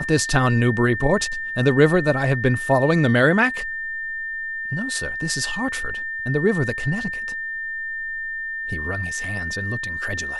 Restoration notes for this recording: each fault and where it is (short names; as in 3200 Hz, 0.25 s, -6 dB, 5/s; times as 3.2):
tone 1800 Hz -26 dBFS